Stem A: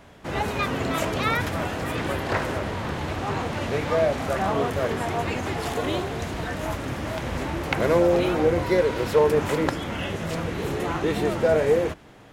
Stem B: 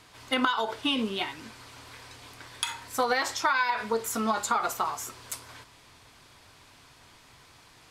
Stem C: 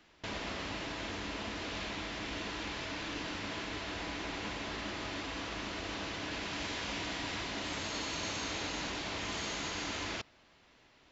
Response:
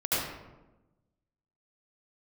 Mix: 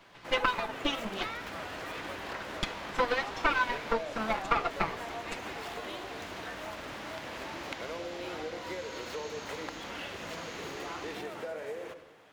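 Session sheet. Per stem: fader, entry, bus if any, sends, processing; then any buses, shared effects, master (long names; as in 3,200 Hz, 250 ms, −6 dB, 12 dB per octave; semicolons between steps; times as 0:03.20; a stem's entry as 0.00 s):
−6.5 dB, 0.00 s, send −20 dB, running median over 5 samples; high-pass filter 790 Hz 6 dB per octave; downward compressor, threshold −31 dBFS, peak gain reduction 11.5 dB
−2.5 dB, 0.00 s, no send, lower of the sound and its delayed copy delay 5.9 ms; low-pass filter 3,700 Hz 12 dB per octave; transient designer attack +5 dB, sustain −10 dB
−8.5 dB, 1.00 s, no send, no processing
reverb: on, RT60 1.1 s, pre-delay 68 ms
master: no processing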